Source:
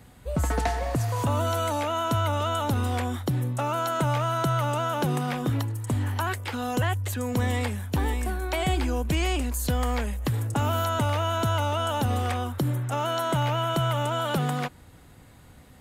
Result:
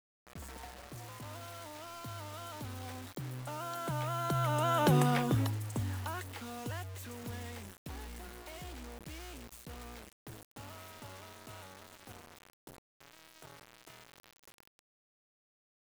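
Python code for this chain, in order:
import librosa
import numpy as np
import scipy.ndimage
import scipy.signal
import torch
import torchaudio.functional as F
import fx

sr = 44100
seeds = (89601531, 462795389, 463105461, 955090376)

y = fx.doppler_pass(x, sr, speed_mps=11, closest_m=3.2, pass_at_s=4.98)
y = fx.quant_dither(y, sr, seeds[0], bits=8, dither='none')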